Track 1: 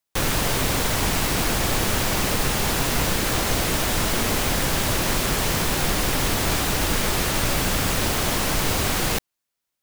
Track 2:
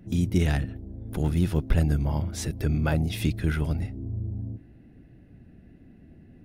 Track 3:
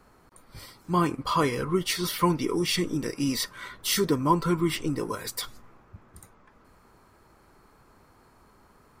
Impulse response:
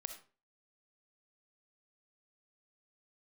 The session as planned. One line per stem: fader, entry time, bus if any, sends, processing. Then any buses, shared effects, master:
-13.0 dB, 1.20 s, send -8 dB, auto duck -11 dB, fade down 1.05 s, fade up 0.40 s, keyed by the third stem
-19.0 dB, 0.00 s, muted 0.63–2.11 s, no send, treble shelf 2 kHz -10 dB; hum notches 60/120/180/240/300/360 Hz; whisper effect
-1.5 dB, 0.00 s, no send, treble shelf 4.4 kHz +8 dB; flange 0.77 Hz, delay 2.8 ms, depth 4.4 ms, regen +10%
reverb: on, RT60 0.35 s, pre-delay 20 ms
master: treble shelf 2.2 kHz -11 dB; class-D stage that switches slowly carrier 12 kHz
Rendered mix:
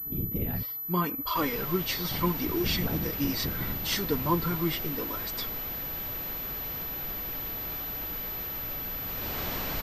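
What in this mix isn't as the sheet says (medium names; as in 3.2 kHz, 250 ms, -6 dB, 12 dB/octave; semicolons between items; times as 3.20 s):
stem 2 -19.0 dB -> -8.0 dB; master: missing treble shelf 2.2 kHz -11 dB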